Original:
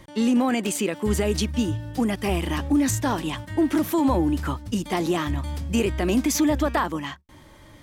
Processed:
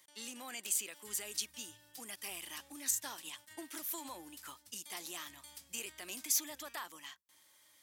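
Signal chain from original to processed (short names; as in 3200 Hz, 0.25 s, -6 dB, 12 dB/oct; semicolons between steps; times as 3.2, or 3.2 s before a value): 2.85–4.5 transient shaper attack +5 dB, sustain -3 dB; differentiator; gain -4.5 dB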